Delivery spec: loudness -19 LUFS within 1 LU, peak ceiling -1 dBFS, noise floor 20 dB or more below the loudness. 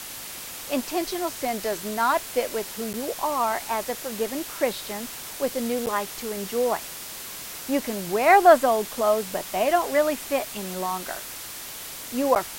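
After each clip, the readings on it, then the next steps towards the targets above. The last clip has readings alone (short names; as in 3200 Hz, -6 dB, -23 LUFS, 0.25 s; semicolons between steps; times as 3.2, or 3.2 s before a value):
dropouts 3; longest dropout 9.0 ms; noise floor -38 dBFS; noise floor target -46 dBFS; loudness -25.5 LUFS; peak -3.5 dBFS; loudness target -19.0 LUFS
-> interpolate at 2.93/5.86/12.35, 9 ms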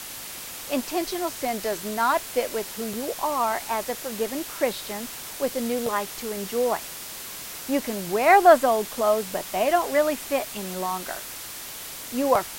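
dropouts 0; noise floor -38 dBFS; noise floor target -46 dBFS
-> noise print and reduce 8 dB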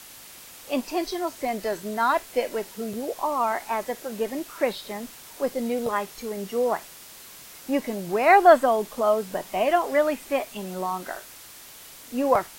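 noise floor -46 dBFS; loudness -25.0 LUFS; peak -4.0 dBFS; loudness target -19.0 LUFS
-> gain +6 dB; limiter -1 dBFS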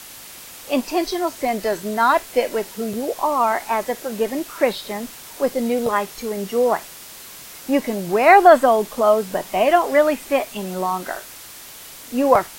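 loudness -19.5 LUFS; peak -1.0 dBFS; noise floor -40 dBFS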